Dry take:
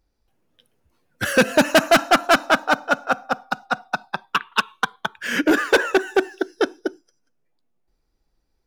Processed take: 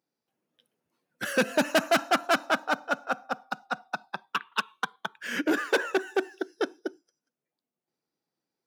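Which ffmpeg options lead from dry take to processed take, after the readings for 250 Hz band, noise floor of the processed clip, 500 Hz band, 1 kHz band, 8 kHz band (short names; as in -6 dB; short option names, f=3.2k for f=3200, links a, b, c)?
-8.5 dB, under -85 dBFS, -8.5 dB, -8.5 dB, -8.5 dB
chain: -af "highpass=f=150:w=0.5412,highpass=f=150:w=1.3066,volume=-8.5dB"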